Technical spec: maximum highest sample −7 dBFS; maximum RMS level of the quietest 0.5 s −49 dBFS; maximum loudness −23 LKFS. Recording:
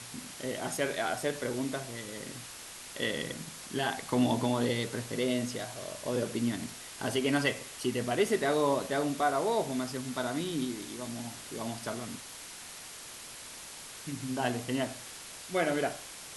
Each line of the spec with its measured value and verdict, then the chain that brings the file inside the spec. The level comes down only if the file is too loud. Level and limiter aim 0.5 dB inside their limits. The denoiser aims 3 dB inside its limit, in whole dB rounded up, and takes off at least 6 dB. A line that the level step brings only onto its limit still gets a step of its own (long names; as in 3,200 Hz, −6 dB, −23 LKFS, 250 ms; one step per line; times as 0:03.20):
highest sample −15.5 dBFS: in spec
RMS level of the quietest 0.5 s −46 dBFS: out of spec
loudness −33.5 LKFS: in spec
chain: broadband denoise 6 dB, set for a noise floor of −46 dBFS